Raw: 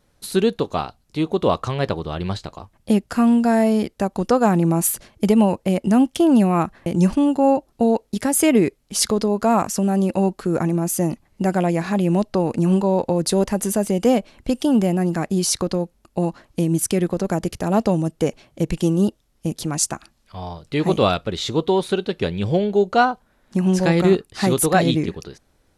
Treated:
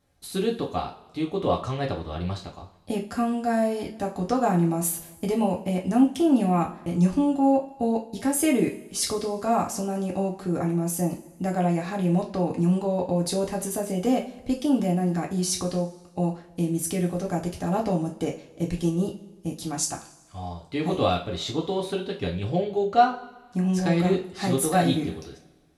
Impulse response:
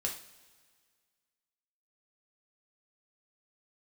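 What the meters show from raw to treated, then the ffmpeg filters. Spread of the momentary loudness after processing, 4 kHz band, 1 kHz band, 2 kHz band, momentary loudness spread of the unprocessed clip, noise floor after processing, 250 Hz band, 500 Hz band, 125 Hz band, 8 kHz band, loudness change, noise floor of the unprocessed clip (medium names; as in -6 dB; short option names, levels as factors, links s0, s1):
10 LU, -6.0 dB, -3.5 dB, -7.0 dB, 9 LU, -52 dBFS, -6.0 dB, -6.5 dB, -4.5 dB, -6.0 dB, -5.5 dB, -63 dBFS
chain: -filter_complex "[1:a]atrim=start_sample=2205,asetrate=61740,aresample=44100[s0];[0:a][s0]afir=irnorm=-1:irlink=0,volume=0.531"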